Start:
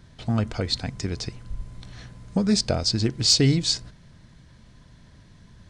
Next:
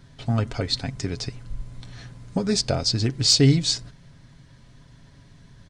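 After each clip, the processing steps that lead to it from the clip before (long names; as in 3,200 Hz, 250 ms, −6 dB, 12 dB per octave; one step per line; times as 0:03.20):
comb filter 7.3 ms, depth 44%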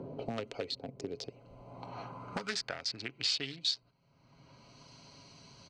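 adaptive Wiener filter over 25 samples
band-pass filter sweep 480 Hz → 5,200 Hz, 0:01.14–0:04.05
multiband upward and downward compressor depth 100%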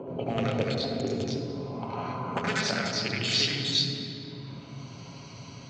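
convolution reverb RT60 3.6 s, pre-delay 73 ms, DRR −3 dB
level −2 dB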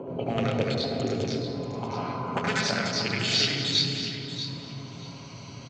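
repeating echo 636 ms, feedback 17%, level −10.5 dB
level +1.5 dB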